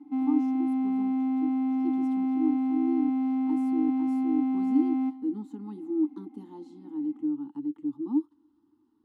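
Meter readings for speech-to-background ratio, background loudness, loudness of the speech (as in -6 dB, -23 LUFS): -5.0 dB, -27.5 LUFS, -32.5 LUFS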